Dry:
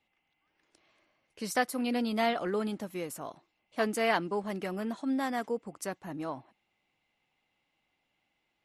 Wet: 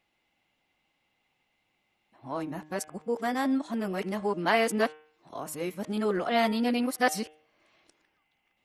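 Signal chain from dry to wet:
played backwards from end to start
hum removal 153.6 Hz, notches 23
level +3.5 dB

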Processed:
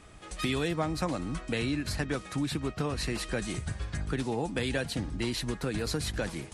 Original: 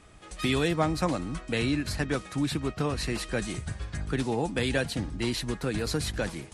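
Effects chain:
downward compressor 2 to 1, threshold −32 dBFS, peak gain reduction 7 dB
level +1.5 dB

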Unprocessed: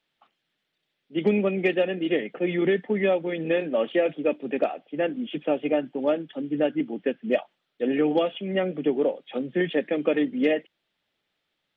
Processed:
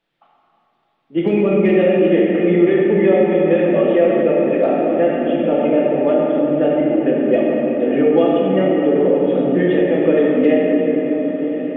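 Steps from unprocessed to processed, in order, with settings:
high-shelf EQ 2,400 Hz −11.5 dB
feedback delay with all-pass diffusion 1,090 ms, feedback 58%, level −14.5 dB
rectangular room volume 170 cubic metres, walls hard, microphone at 0.72 metres
in parallel at 0 dB: brickwall limiter −15 dBFS, peak gain reduction 9.5 dB

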